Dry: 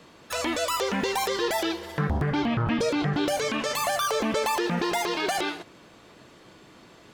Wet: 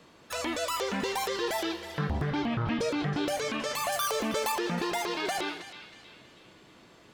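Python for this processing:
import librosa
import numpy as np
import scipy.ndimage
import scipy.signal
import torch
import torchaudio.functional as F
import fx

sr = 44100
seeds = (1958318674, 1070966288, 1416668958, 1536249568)

y = fx.high_shelf(x, sr, hz=9100.0, db=10.0, at=(3.92, 4.52))
y = fx.echo_banded(y, sr, ms=319, feedback_pct=51, hz=3000.0, wet_db=-10)
y = y * librosa.db_to_amplitude(-4.5)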